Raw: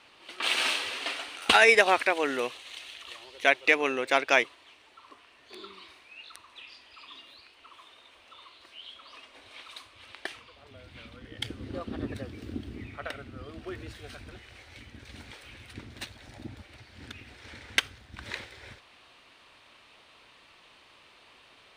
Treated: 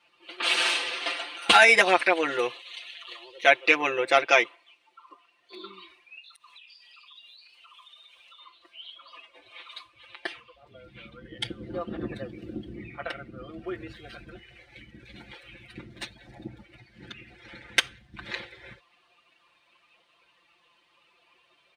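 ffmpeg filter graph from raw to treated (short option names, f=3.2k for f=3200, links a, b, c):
-filter_complex "[0:a]asettb=1/sr,asplit=3[a][b][c];[a]atrim=end=4.264[d];[b]atrim=start=4.26:end=5.64,asetpts=PTS-STARTPTS,afade=t=in:d=0.004:c=qsin,afade=t=out:st=1.376:d=0.004:c=qsin,highpass=f=190:p=1,bandreject=f=1.7k:w=14[e];[c]atrim=start=5.636[f];[d][e]acrossfade=d=0.004:c1=hsin:c2=qsin[g];[g][f]acrossfade=d=0.004:c1=qsin:c2=hsin,asettb=1/sr,asplit=3[h][i][j];[h]atrim=end=6.184[k];[i]atrim=start=6.18:end=8.4,asetpts=PTS-STARTPTS,afade=t=in:d=0.004:c=qsin,afade=t=out:st=2.216:d=0.004:c=qsin,highshelf=f=2.9k:g=11.5,acompressor=threshold=-48dB:ratio=8:attack=3.2:release=140:knee=1:detection=peak,bandreject=f=330:w=6[l];[j]atrim=start=8.396[m];[k][l]acrossfade=d=0.004:c1=hsin:c2=qsin[n];[n][m]acrossfade=d=0.004:c1=qsin:c2=hsin,afftdn=nr=14:nf=-50,highpass=44,aecho=1:1:5.8:0.99"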